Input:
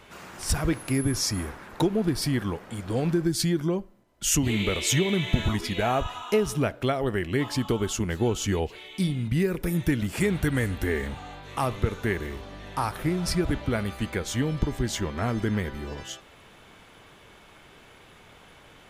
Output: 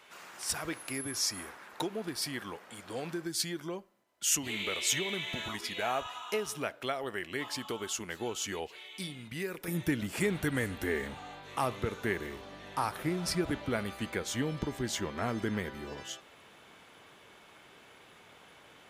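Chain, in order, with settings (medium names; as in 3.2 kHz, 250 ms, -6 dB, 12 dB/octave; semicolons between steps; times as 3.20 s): high-pass 860 Hz 6 dB/octave, from 9.68 s 230 Hz; trim -3.5 dB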